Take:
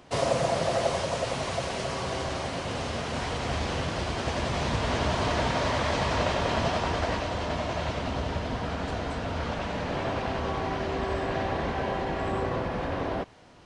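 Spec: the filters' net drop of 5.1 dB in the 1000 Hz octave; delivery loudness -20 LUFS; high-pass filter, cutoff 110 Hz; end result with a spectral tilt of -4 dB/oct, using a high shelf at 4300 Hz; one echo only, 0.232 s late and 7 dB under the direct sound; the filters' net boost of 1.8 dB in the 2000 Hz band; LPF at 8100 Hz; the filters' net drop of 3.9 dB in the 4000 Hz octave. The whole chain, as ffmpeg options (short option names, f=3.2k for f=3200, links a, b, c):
-af "highpass=110,lowpass=8.1k,equalizer=f=1k:t=o:g=-8,equalizer=f=2k:t=o:g=7,equalizer=f=4k:t=o:g=-3.5,highshelf=f=4.3k:g=-7.5,aecho=1:1:232:0.447,volume=10.5dB"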